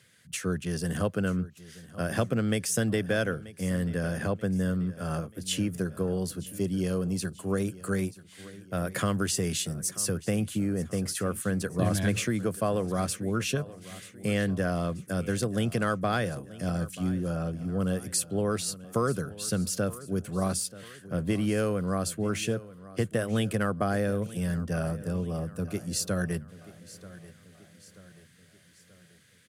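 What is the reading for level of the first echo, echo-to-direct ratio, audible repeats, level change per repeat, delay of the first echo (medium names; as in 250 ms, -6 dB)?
-18.0 dB, -17.0 dB, 3, -6.0 dB, 934 ms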